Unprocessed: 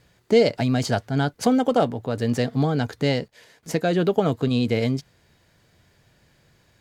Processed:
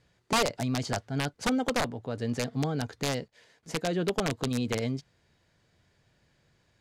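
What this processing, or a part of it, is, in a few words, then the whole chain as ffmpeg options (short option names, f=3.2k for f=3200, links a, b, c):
overflowing digital effects unit: -af "aeval=exprs='(mod(3.55*val(0)+1,2)-1)/3.55':c=same,lowpass=8.7k,volume=-8dB"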